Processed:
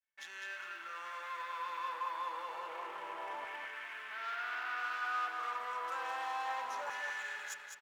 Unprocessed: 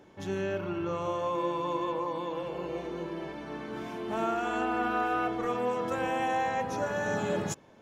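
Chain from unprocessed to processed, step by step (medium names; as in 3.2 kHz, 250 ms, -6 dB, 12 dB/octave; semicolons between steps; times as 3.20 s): 2.67–4.80 s: CVSD coder 16 kbps; expander -43 dBFS; bass shelf 130 Hz +8 dB; hum notches 50/100/150/200/250/300/350 Hz; waveshaping leveller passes 3; peak limiter -28 dBFS, peak gain reduction 10.5 dB; LFO high-pass saw down 0.29 Hz 890–1900 Hz; feedback delay 204 ms, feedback 41%, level -5.5 dB; trim -8 dB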